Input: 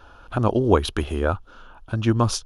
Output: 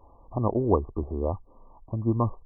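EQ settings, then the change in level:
linear-phase brick-wall low-pass 1,200 Hz
−5.0 dB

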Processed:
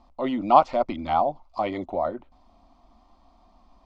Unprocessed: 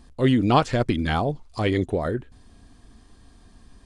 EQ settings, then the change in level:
low-pass filter 5,400 Hz 24 dB per octave
flat-topped bell 1,000 Hz +13 dB 2.6 octaves
phaser with its sweep stopped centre 450 Hz, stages 6
−7.0 dB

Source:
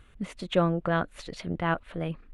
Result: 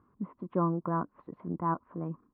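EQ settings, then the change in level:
high-pass filter 150 Hz 12 dB per octave
transistor ladder low-pass 1,100 Hz, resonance 80%
low shelf with overshoot 430 Hz +8.5 dB, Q 1.5
+1.0 dB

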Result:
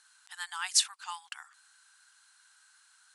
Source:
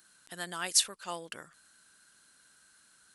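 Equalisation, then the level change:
linear-phase brick-wall high-pass 740 Hz
low-pass filter 9,500 Hz 24 dB per octave
+1.0 dB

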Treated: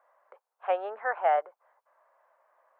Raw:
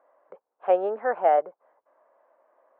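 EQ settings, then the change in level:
high-pass filter 980 Hz 12 dB per octave
+2.5 dB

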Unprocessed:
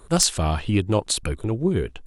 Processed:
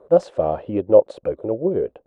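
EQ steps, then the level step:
high-pass filter 98 Hz 6 dB per octave
low-pass with resonance 550 Hz, resonance Q 5.9
spectral tilt +4 dB per octave
+3.5 dB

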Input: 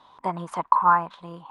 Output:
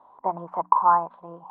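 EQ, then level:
low-pass with resonance 800 Hz, resonance Q 1.6
low-shelf EQ 200 Hz −11 dB
mains-hum notches 60/120/180/240/300 Hz
0.0 dB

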